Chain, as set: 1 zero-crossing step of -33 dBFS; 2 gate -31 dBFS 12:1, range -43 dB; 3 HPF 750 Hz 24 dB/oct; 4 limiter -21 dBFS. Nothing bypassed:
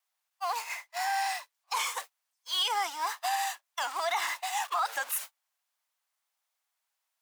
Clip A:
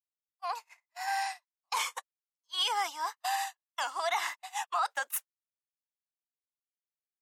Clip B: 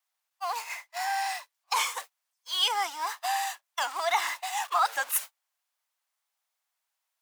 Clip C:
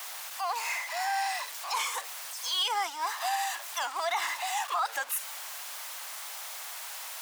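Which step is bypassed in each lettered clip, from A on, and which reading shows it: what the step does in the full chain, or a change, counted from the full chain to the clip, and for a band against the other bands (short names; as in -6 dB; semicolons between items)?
1, distortion -11 dB; 4, crest factor change +6.0 dB; 2, 8 kHz band +2.0 dB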